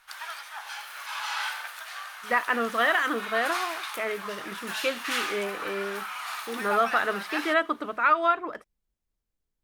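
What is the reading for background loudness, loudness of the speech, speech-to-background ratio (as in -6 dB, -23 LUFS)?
-34.0 LUFS, -27.5 LUFS, 6.5 dB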